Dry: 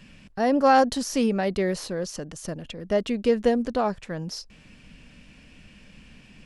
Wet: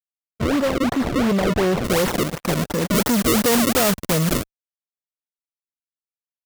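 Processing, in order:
fade in at the beginning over 1.88 s
noise gate −39 dBFS, range −7 dB
low-pass filter 7,500 Hz 24 dB per octave
parametric band 2,800 Hz −15 dB 0.31 octaves
fuzz pedal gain 42 dB, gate −42 dBFS
notch comb filter 800 Hz
sample-and-hold swept by an LFO 31×, swing 160% 2.8 Hz
high-shelf EQ 5,300 Hz −8.5 dB, from 0:01.84 +5 dB, from 0:02.95 +12 dB
level −3 dB

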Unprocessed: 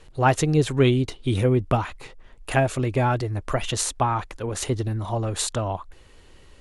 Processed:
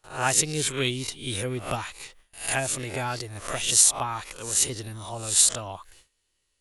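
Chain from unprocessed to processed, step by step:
peak hold with a rise ahead of every peak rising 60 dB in 0.40 s
noise gate with hold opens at −35 dBFS
first-order pre-emphasis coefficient 0.9
level +8 dB

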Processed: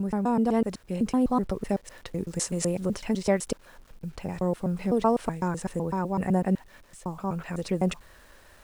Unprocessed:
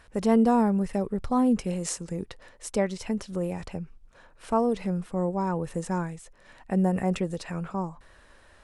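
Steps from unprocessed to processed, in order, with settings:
slices reordered back to front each 126 ms, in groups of 7
bit reduction 10 bits
speech leveller within 4 dB 2 s

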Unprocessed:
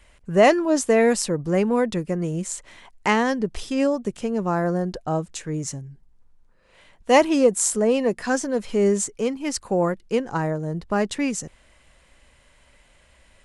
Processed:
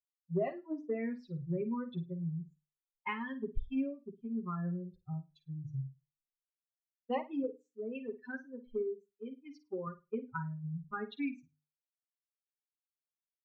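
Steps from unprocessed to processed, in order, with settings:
spectral dynamics exaggerated over time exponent 3
comb filter 7.5 ms, depth 82%
downward compressor 16 to 1, threshold −33 dBFS, peak gain reduction 23 dB
0:07.43–0:09.87: low-shelf EQ 220 Hz −6.5 dB
low-pass filter 2,900 Hz 24 dB per octave
high-shelf EQ 2,100 Hz −8 dB
mains-hum notches 50/100/150/200/250/300 Hz
flutter between parallel walls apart 9.1 metres, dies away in 0.27 s
multiband upward and downward expander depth 70%

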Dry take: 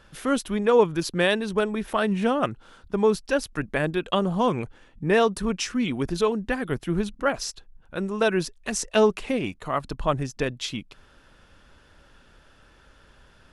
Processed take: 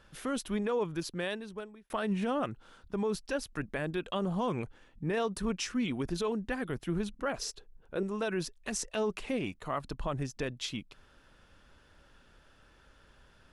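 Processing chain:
0:00.68–0:01.90: fade out
0:07.39–0:08.03: parametric band 430 Hz +12.5 dB 0.67 octaves
brickwall limiter −17 dBFS, peak gain reduction 9.5 dB
level −6 dB

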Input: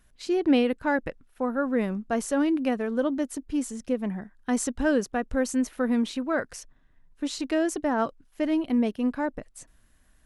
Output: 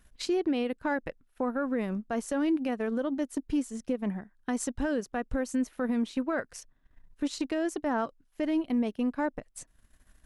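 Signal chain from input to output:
transient designer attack +6 dB, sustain −8 dB
brickwall limiter −21 dBFS, peak gain reduction 12.5 dB

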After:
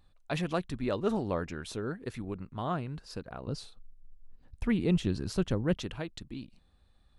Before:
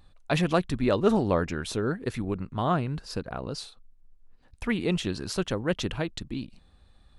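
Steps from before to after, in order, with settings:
0:03.47–0:05.77: low-shelf EQ 340 Hz +11.5 dB
level −7.5 dB

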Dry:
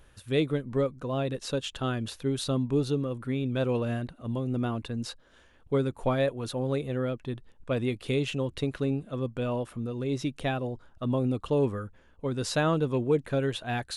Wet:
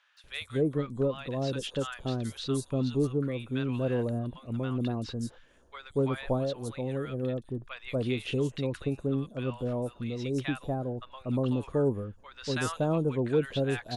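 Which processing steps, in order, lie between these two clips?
0:06.18–0:06.99: downward compressor 2.5 to 1, threshold −28 dBFS, peak gain reduction 5 dB
three-band delay without the direct sound mids, highs, lows 170/240 ms, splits 1,000/5,700 Hz
level −1 dB

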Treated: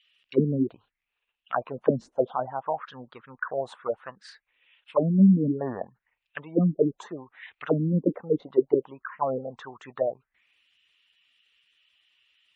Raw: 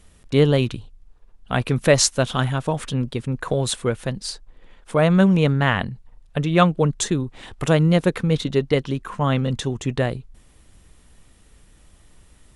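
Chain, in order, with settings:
envelope filter 220–3,000 Hz, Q 5.7, down, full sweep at −12 dBFS
gate on every frequency bin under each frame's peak −25 dB strong
level +5 dB

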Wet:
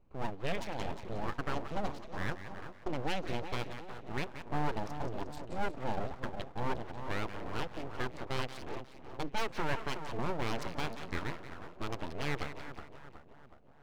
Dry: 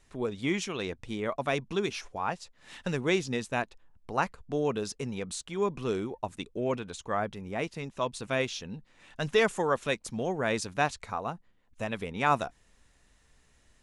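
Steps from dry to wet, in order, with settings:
adaptive Wiener filter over 25 samples
0:00.83–0:02.89: flat-topped bell 2,100 Hz −10 dB
brickwall limiter −21 dBFS, peak gain reduction 8.5 dB
high-frequency loss of the air 110 metres
on a send: echo with a time of its own for lows and highs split 800 Hz, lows 369 ms, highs 179 ms, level −8.5 dB
on the sum: full-wave rectification

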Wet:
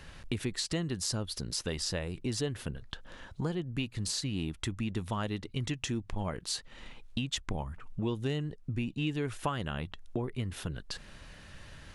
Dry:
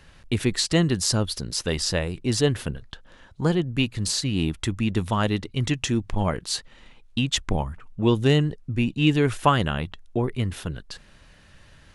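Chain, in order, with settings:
downward compressor 3 to 1, threshold −37 dBFS, peak gain reduction 18 dB
level +2 dB

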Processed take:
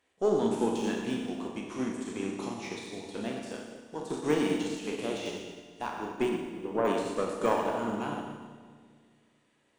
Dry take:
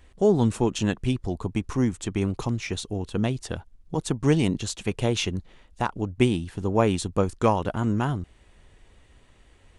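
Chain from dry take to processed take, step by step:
peak hold with a decay on every bin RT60 0.38 s
high-pass filter 260 Hz 12 dB per octave
de-essing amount 80%
0:06.29–0:06.85: low-pass filter 1,000 Hz 12 dB per octave
tube saturation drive 10 dB, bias 0.55
echo with a time of its own for lows and highs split 590 Hz, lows 209 ms, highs 118 ms, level −9 dB
four-comb reverb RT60 1.7 s, combs from 27 ms, DRR 0.5 dB
expander for the loud parts 1.5 to 1, over −39 dBFS
level −2 dB

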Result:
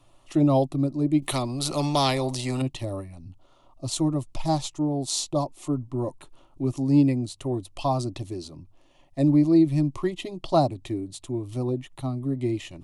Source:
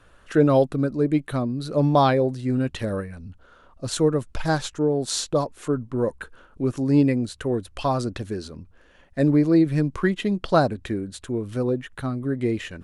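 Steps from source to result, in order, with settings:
phaser with its sweep stopped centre 310 Hz, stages 8
0:01.22–0:02.62: every bin compressed towards the loudest bin 2 to 1

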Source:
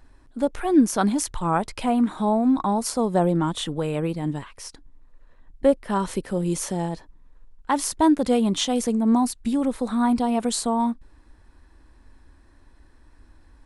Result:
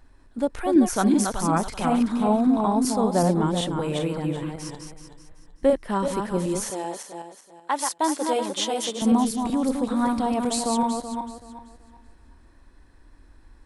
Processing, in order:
feedback delay that plays each chunk backwards 190 ms, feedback 51%, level −4.5 dB
0:06.70–0:09.02: high-pass filter 470 Hz 12 dB per octave
level −1.5 dB

